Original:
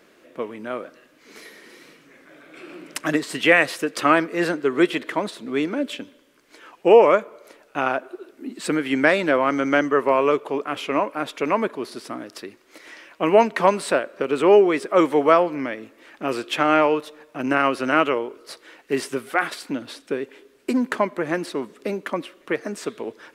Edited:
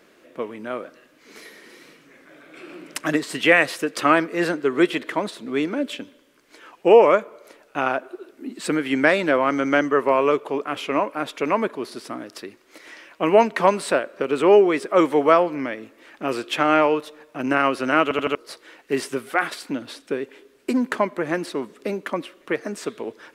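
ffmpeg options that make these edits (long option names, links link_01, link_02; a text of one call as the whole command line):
ffmpeg -i in.wav -filter_complex "[0:a]asplit=5[link_01][link_02][link_03][link_04][link_05];[link_01]atrim=end=18.112[link_06];[link_02]atrim=start=18.028:end=18.112[link_07];[link_03]atrim=start=18.028:end=18.112[link_08];[link_04]atrim=start=18.028:end=18.112[link_09];[link_05]atrim=start=18.348[link_10];[link_06][link_07]acrossfade=duration=0.004:curve1=hsin:curve2=hsin[link_11];[link_11][link_08]acrossfade=duration=0.004:curve1=hsin:curve2=hsin[link_12];[link_12][link_09]acrossfade=duration=0.004:curve1=hsin:curve2=hsin[link_13];[link_13][link_10]acrossfade=duration=0.004:curve1=hsin:curve2=hsin" out.wav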